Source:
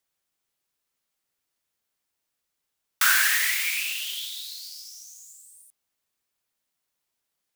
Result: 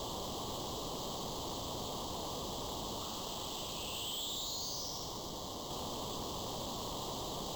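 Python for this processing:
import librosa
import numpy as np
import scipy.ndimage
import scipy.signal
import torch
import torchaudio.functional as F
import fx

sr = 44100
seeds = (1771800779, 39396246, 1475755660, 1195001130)

y = np.sign(x) * np.sqrt(np.mean(np.square(x)))
y = scipy.signal.sosfilt(scipy.signal.ellip(3, 1.0, 40, [1100.0, 3100.0], 'bandstop', fs=sr, output='sos'), y)
y = fx.high_shelf(y, sr, hz=2600.0, db=-11.5)
y = 10.0 ** (-37.5 / 20.0) * np.tanh(y / 10.0 ** (-37.5 / 20.0))
y = np.repeat(scipy.signal.resample_poly(y, 1, 4), 4)[:len(y)]
y = fx.env_flatten(y, sr, amount_pct=50)
y = y * 10.0 ** (4.5 / 20.0)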